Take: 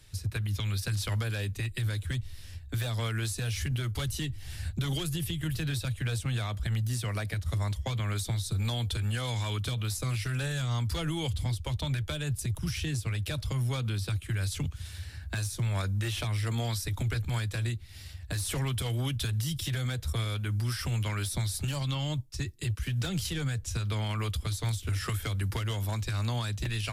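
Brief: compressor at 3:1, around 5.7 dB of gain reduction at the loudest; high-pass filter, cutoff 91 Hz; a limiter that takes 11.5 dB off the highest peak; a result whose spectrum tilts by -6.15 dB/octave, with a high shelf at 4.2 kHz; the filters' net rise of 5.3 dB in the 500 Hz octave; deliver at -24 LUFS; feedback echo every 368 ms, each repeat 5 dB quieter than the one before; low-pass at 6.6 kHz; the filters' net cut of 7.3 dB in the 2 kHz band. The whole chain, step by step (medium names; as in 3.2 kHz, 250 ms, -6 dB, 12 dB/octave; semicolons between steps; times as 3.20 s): high-pass 91 Hz; low-pass 6.6 kHz; peaking EQ 500 Hz +7 dB; peaking EQ 2 kHz -8 dB; treble shelf 4.2 kHz -9 dB; compression 3:1, threshold -35 dBFS; peak limiter -35 dBFS; feedback delay 368 ms, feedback 56%, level -5 dB; trim +17 dB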